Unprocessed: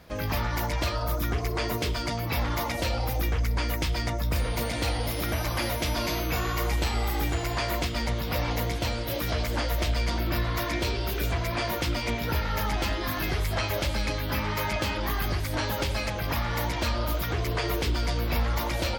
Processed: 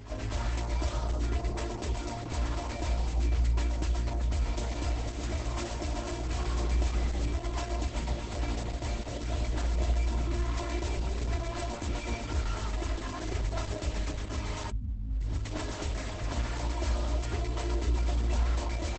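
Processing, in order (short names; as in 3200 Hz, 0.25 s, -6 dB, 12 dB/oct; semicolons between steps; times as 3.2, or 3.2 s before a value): tracing distortion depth 0.49 ms; spectral delete 14.7–15.45, 260–9100 Hz; low shelf 120 Hz +4.5 dB; comb 3 ms, depth 68%; dynamic EQ 1500 Hz, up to -4 dB, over -48 dBFS, Q 4.4; on a send: reverse echo 0.241 s -11.5 dB; on the sum: gain -8 dB; Opus 10 kbps 48000 Hz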